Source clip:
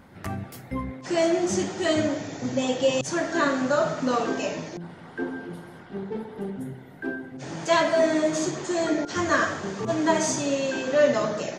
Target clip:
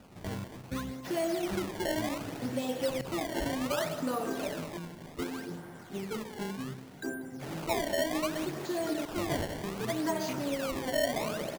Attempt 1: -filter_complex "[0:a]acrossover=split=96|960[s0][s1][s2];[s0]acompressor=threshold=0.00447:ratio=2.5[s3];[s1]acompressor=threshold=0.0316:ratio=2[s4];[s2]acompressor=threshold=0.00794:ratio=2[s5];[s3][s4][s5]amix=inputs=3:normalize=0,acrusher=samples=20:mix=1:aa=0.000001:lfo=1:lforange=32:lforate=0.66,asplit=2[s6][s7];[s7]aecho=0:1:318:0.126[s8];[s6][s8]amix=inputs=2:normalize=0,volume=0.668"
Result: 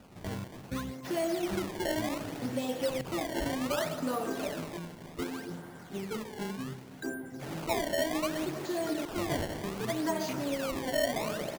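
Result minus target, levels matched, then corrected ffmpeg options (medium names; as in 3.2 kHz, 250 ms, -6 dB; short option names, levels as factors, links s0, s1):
echo 130 ms late
-filter_complex "[0:a]acrossover=split=96|960[s0][s1][s2];[s0]acompressor=threshold=0.00447:ratio=2.5[s3];[s1]acompressor=threshold=0.0316:ratio=2[s4];[s2]acompressor=threshold=0.00794:ratio=2[s5];[s3][s4][s5]amix=inputs=3:normalize=0,acrusher=samples=20:mix=1:aa=0.000001:lfo=1:lforange=32:lforate=0.66,asplit=2[s6][s7];[s7]aecho=0:1:188:0.126[s8];[s6][s8]amix=inputs=2:normalize=0,volume=0.668"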